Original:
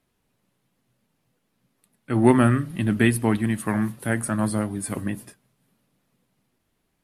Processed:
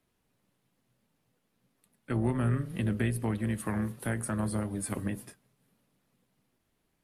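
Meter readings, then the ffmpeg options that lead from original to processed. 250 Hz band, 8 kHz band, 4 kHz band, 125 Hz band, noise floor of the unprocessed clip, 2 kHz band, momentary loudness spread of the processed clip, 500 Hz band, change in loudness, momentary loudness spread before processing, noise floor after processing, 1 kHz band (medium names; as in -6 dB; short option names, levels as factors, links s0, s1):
-10.5 dB, -7.5 dB, -10.5 dB, -6.0 dB, -73 dBFS, -11.0 dB, 5 LU, -11.5 dB, -9.5 dB, 11 LU, -77 dBFS, -12.0 dB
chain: -filter_complex "[0:a]acrossover=split=130[s0][s1];[s1]acompressor=threshold=0.0447:ratio=5[s2];[s0][s2]amix=inputs=2:normalize=0,tremolo=f=290:d=0.462,volume=0.841"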